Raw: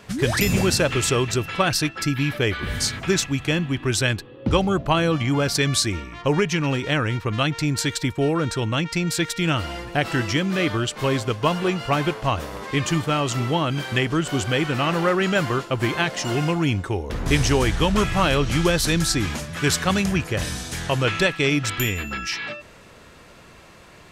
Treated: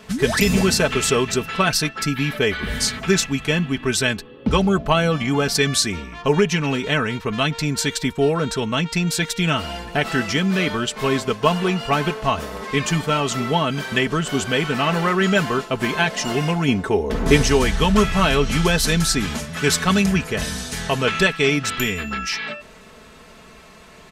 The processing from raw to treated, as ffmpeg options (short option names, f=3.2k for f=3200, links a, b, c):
-filter_complex "[0:a]asettb=1/sr,asplit=3[a][b][c];[a]atrim=end=16.684[d];[b]atrim=start=16.68:end=17.43,asetpts=PTS-STARTPTS,afade=t=in:d=0.004:c=qsin,afade=t=out:st=0.746:d=0.004:c=qsin,equalizer=f=420:t=o:w=2.7:g=6[e];[c]atrim=start=17.426[f];[d][e]acrossfade=d=0.004:c1=hsin:c2=qsin[g];[g][f]acrossfade=d=0.004:c1=qsin:c2=hsin,aecho=1:1:4.6:0.63,volume=1dB"